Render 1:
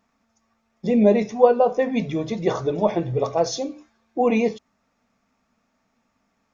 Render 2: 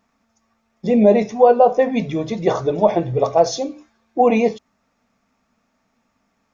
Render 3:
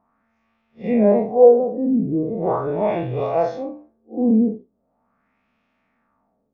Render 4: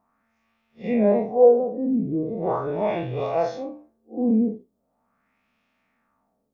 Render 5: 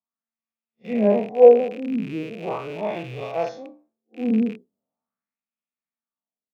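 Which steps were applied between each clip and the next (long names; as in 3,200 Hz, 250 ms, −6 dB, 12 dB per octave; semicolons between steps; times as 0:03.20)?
dynamic equaliser 690 Hz, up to +6 dB, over −29 dBFS, Q 1.7; boost into a limiter +3.5 dB; level −1 dB
spectrum smeared in time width 106 ms; auto-filter low-pass sine 0.4 Hz 270–2,900 Hz; level −1.5 dB
high-shelf EQ 2,800 Hz +9.5 dB; level −4 dB
loose part that buzzes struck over −37 dBFS, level −27 dBFS; Chebyshev high-pass filter 150 Hz, order 2; multiband upward and downward expander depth 70%; level −1.5 dB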